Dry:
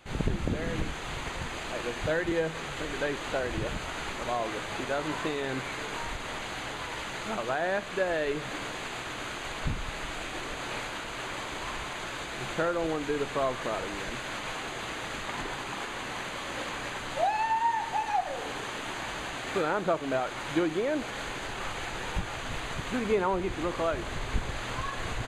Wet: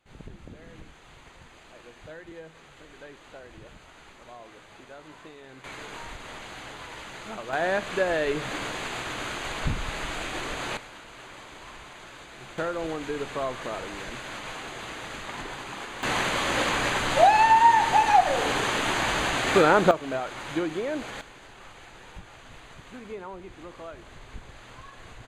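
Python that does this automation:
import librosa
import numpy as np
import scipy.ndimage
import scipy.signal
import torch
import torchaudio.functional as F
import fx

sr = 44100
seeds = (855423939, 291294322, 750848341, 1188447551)

y = fx.gain(x, sr, db=fx.steps((0.0, -15.0), (5.64, -4.5), (7.53, 3.5), (10.77, -8.5), (12.58, -1.5), (16.03, 10.0), (19.91, -1.0), (21.21, -12.0)))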